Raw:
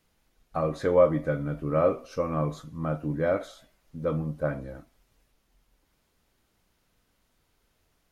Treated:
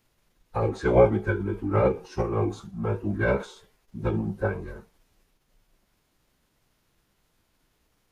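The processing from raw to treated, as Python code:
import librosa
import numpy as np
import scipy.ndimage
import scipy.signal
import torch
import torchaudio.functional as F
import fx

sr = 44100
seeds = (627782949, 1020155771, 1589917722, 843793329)

y = fx.pitch_keep_formants(x, sr, semitones=-6.5)
y = y * 10.0 ** (2.5 / 20.0)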